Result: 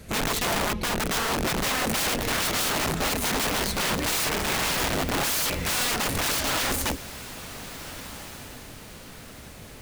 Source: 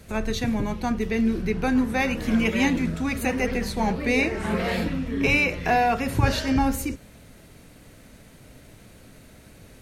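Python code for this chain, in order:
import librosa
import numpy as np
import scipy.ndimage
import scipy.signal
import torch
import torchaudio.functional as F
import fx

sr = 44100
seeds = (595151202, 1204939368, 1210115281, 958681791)

y = (np.mod(10.0 ** (23.5 / 20.0) * x + 1.0, 2.0) - 1.0) / 10.0 ** (23.5 / 20.0)
y = fx.echo_diffused(y, sr, ms=1485, feedback_pct=41, wet_db=-14.0)
y = F.gain(torch.from_numpy(y), 2.5).numpy()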